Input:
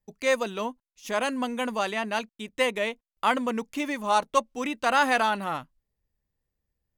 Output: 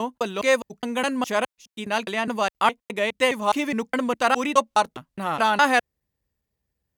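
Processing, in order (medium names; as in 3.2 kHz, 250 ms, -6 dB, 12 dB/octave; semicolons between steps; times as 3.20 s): slices played last to first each 207 ms, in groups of 4; high-pass 54 Hz; trim +4 dB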